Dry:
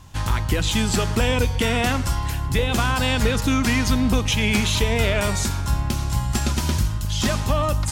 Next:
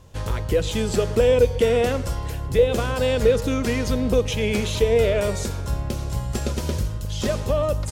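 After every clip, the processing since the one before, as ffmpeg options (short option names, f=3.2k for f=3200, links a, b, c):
-af "firequalizer=gain_entry='entry(300,0);entry(480,14);entry(790,-3)':delay=0.05:min_phase=1,volume=-3.5dB"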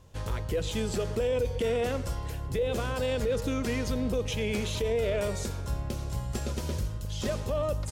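-af "alimiter=limit=-14.5dB:level=0:latency=1:release=15,volume=-6.5dB"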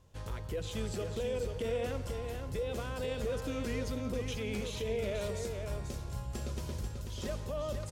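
-af "aecho=1:1:175|489:0.126|0.501,volume=-7.5dB"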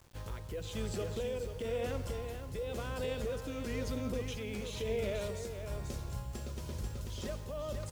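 -af "tremolo=f=1:d=0.35,acrusher=bits=9:mix=0:aa=0.000001"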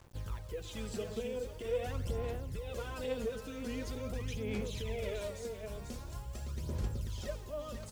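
-af "aphaser=in_gain=1:out_gain=1:delay=4.6:decay=0.56:speed=0.44:type=sinusoidal,volume=-3.5dB"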